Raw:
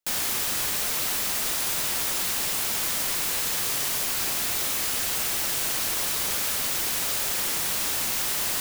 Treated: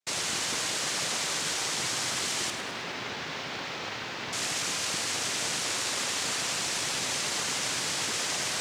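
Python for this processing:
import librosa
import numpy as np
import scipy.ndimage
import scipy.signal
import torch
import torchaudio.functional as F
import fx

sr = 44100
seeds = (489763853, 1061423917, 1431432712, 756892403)

y = fx.noise_vocoder(x, sr, seeds[0], bands=3)
y = fx.air_absorb(y, sr, metres=230.0, at=(2.5, 4.33))
y = fx.echo_crushed(y, sr, ms=105, feedback_pct=55, bits=9, wet_db=-9.5)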